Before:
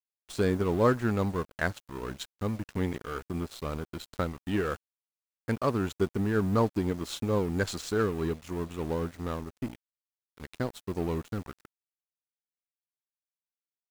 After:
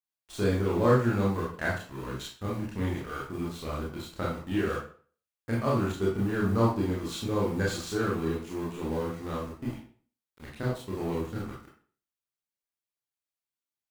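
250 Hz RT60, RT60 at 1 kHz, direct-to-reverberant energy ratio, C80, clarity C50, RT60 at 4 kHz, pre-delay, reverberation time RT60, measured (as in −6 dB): 0.45 s, 0.45 s, −5.5 dB, 8.0 dB, 3.5 dB, 0.35 s, 23 ms, 0.45 s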